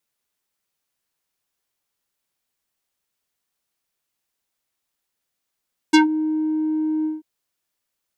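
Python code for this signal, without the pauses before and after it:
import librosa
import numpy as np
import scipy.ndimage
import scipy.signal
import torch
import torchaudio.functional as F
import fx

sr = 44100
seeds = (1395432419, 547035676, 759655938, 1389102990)

y = fx.sub_voice(sr, note=63, wave='square', cutoff_hz=420.0, q=1.7, env_oct=4.5, env_s=0.13, attack_ms=13.0, decay_s=0.13, sustain_db=-15.0, release_s=0.17, note_s=1.12, slope=12)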